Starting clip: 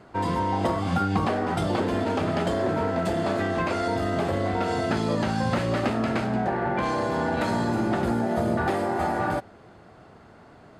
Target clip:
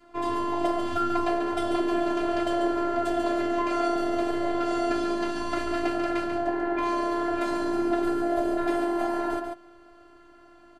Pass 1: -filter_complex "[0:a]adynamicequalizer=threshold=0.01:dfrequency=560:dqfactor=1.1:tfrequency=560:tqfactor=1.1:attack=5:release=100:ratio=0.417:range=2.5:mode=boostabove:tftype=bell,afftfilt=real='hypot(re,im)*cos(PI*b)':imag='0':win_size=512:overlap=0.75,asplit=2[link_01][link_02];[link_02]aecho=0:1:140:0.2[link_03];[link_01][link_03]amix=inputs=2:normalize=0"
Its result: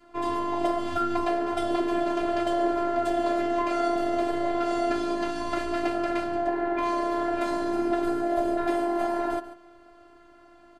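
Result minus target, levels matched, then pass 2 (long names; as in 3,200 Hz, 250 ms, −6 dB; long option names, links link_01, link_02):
echo-to-direct −8 dB
-filter_complex "[0:a]adynamicequalizer=threshold=0.01:dfrequency=560:dqfactor=1.1:tfrequency=560:tqfactor=1.1:attack=5:release=100:ratio=0.417:range=2.5:mode=boostabove:tftype=bell,afftfilt=real='hypot(re,im)*cos(PI*b)':imag='0':win_size=512:overlap=0.75,asplit=2[link_01][link_02];[link_02]aecho=0:1:140:0.501[link_03];[link_01][link_03]amix=inputs=2:normalize=0"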